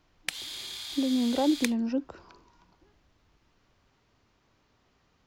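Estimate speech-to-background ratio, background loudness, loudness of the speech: 7.5 dB, −36.0 LKFS, −28.5 LKFS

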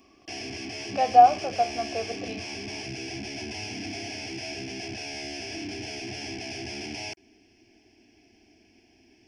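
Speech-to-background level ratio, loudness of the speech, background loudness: 13.5 dB, −21.5 LKFS, −35.0 LKFS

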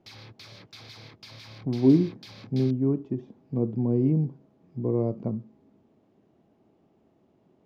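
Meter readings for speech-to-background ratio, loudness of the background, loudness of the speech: 20.0 dB, −46.5 LKFS, −26.5 LKFS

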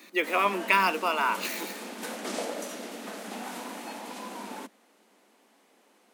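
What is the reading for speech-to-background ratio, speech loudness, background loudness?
12.0 dB, −26.0 LKFS, −38.0 LKFS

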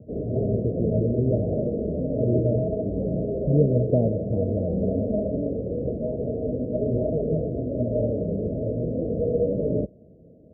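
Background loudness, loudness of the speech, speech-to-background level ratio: −27.0 LKFS, −26.5 LKFS, 0.5 dB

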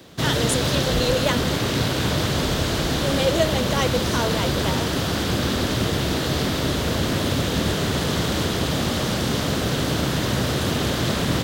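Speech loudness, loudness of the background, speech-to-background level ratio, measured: −26.5 LKFS, −22.5 LKFS, −4.0 dB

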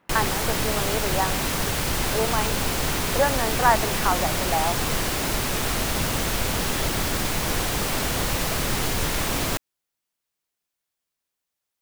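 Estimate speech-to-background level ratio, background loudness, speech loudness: −2.0 dB, −24.5 LKFS, −26.5 LKFS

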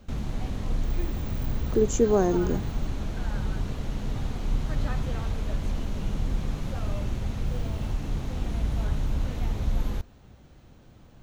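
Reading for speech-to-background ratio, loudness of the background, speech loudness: 7.0 dB, −32.0 LKFS, −25.0 LKFS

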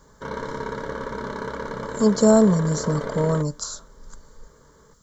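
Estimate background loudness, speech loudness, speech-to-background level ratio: −31.5 LKFS, −20.5 LKFS, 11.0 dB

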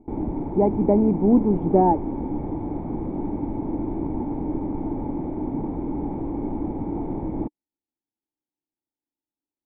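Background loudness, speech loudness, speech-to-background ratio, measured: −29.0 LKFS, −20.5 LKFS, 8.5 dB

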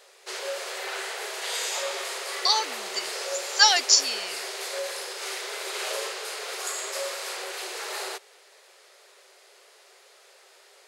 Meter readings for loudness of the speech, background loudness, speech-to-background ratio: −22.0 LKFS, −31.5 LKFS, 9.5 dB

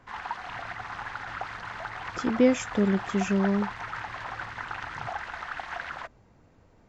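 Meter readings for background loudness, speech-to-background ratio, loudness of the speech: −36.5 LKFS, 10.5 dB, −26.0 LKFS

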